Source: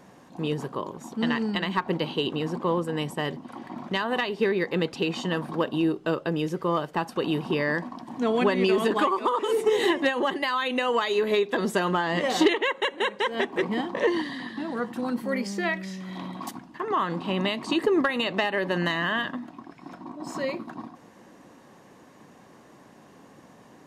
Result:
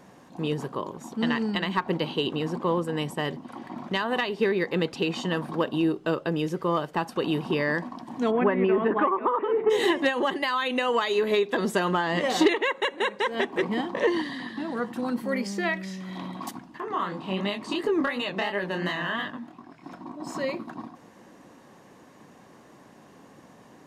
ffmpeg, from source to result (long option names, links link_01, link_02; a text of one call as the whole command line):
ffmpeg -i in.wav -filter_complex "[0:a]asplit=3[link_01][link_02][link_03];[link_01]afade=type=out:start_time=8.3:duration=0.02[link_04];[link_02]lowpass=frequency=2100:width=0.5412,lowpass=frequency=2100:width=1.3066,afade=type=in:start_time=8.3:duration=0.02,afade=type=out:start_time=9.69:duration=0.02[link_05];[link_03]afade=type=in:start_time=9.69:duration=0.02[link_06];[link_04][link_05][link_06]amix=inputs=3:normalize=0,asettb=1/sr,asplit=3[link_07][link_08][link_09];[link_07]atrim=end=12.404[link_10];[link_08]atrim=start=12.4:end=13.36,asetpts=PTS-STARTPTS,afade=type=in:duration=0.004:curve=qsin,afade=type=out:start_time=0.956:duration=0.004:curve=qsin,bandreject=frequency=3100:width=12[link_11];[link_09]atrim=start=13.356[link_12];[link_10][link_11]acrossfade=duration=0.004:curve1=hsin:curve2=qsin[link_13];[link_13][link_12]acrossfade=duration=0.004:curve1=qsin:curve2=hsin,asettb=1/sr,asplit=3[link_14][link_15][link_16];[link_14]atrim=end=16.804[link_17];[link_15]atrim=start=16.8:end=19.84,asetpts=PTS-STARTPTS,afade=type=in:duration=0.004:curve=qsin,afade=type=out:start_time=3.036:duration=0.004:curve=qsin,flanger=delay=19.5:depth=7.1:speed=2.8[link_18];[link_16]atrim=start=19.836[link_19];[link_17][link_18]acrossfade=duration=0.004:curve1=hsin:curve2=qsin[link_20];[link_20][link_19]acrossfade=duration=0.004:curve1=qsin:curve2=hsin" out.wav